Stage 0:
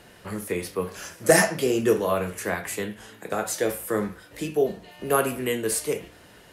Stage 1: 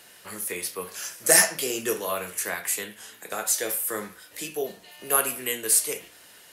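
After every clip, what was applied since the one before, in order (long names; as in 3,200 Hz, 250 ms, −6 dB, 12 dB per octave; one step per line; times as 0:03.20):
spectral tilt +3.5 dB per octave
level −3.5 dB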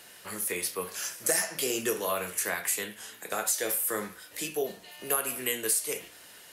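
downward compressor 6 to 1, threshold −24 dBFS, peak gain reduction 11.5 dB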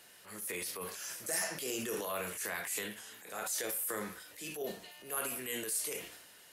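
transient designer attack −8 dB, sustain +7 dB
level −7 dB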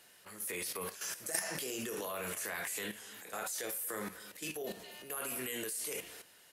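single-tap delay 236 ms −20.5 dB
output level in coarse steps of 11 dB
level +4.5 dB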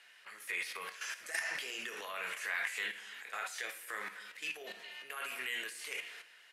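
resonant band-pass 2,100 Hz, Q 1.5
convolution reverb RT60 1.0 s, pre-delay 3 ms, DRR 12.5 dB
level +7 dB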